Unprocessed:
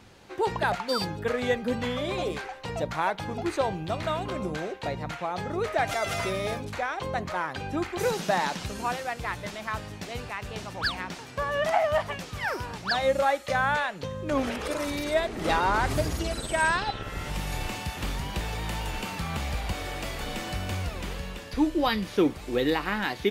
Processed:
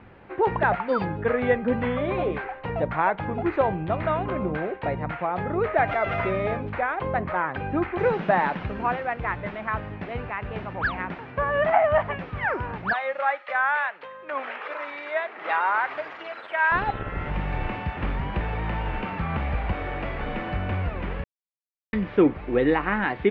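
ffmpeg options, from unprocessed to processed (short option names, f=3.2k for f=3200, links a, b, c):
-filter_complex "[0:a]asettb=1/sr,asplit=3[a][b][c];[a]atrim=end=12.934[d];[b]atrim=start=12.93:end=16.72,asetpts=PTS-STARTPTS,afade=t=in:d=0.004:c=qsin,afade=t=out:st=3.786:d=0.004:c=qsin,highpass=940[e];[c]atrim=start=16.716[f];[d][e]acrossfade=d=0.004:c1=hsin:c2=qsin[g];[g][f]acrossfade=d=0.004:c1=qsin:c2=hsin,asplit=3[h][i][j];[h]atrim=end=21.24,asetpts=PTS-STARTPTS,afade=t=out:st=21.236:d=0.004:c=hsin[k];[i]atrim=start=21.24:end=21.93,asetpts=PTS-STARTPTS,volume=0[l];[j]atrim=start=21.93,asetpts=PTS-STARTPTS,afade=t=in:d=0.004:c=hsin[m];[k][l][m]concat=n=3:v=0:a=1,lowpass=f=2.3k:w=0.5412,lowpass=f=2.3k:w=1.3066,volume=4.5dB"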